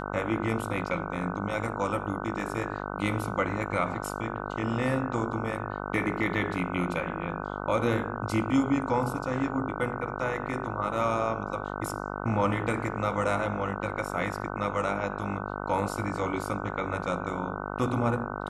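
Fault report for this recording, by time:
buzz 50 Hz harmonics 30 -35 dBFS

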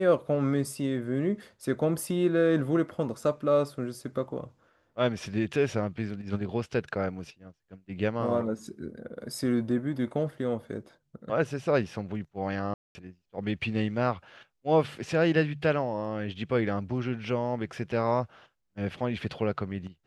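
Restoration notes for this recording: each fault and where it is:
12.74–12.95 gap 0.21 s

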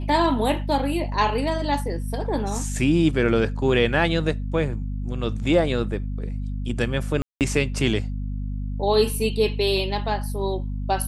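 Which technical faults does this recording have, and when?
hum 50 Hz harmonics 5 -28 dBFS
7.22–7.41 gap 0.188 s

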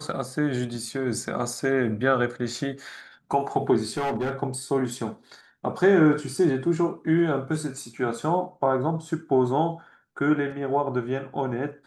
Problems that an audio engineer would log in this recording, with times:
3.97–4.32 clipped -23 dBFS

